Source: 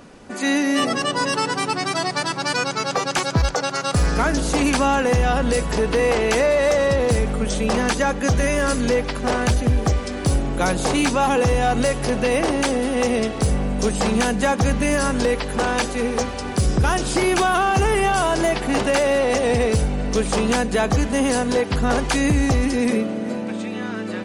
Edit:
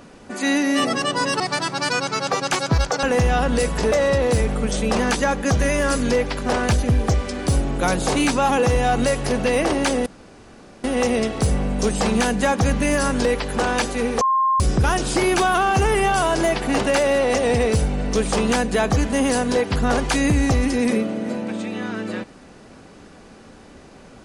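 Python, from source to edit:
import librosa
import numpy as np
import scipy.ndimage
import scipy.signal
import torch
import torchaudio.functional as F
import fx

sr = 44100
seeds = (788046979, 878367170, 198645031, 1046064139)

y = fx.edit(x, sr, fx.cut(start_s=1.4, length_s=0.64),
    fx.cut(start_s=3.67, length_s=1.3),
    fx.cut(start_s=5.86, length_s=0.84),
    fx.insert_room_tone(at_s=12.84, length_s=0.78),
    fx.bleep(start_s=16.21, length_s=0.39, hz=1060.0, db=-15.0), tone=tone)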